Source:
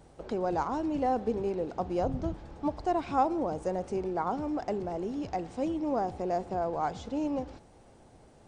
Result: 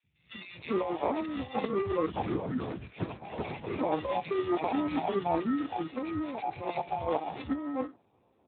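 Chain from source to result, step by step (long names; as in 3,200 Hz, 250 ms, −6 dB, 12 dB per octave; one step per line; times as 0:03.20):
spectrum averaged block by block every 50 ms
noise reduction from a noise print of the clip's start 19 dB
high-shelf EQ 3,100 Hz +2 dB
compressor whose output falls as the input rises −36 dBFS, ratio −0.5
decimation without filtering 28×
three-band delay without the direct sound highs, lows, mids 30/390 ms, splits 160/2,000 Hz
0:02.06–0:03.79: linear-prediction vocoder at 8 kHz whisper
level +7 dB
Speex 8 kbit/s 8,000 Hz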